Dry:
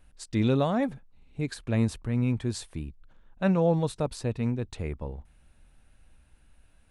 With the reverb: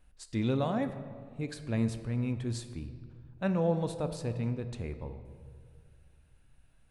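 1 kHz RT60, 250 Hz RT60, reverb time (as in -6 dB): 1.9 s, 2.3 s, 2.1 s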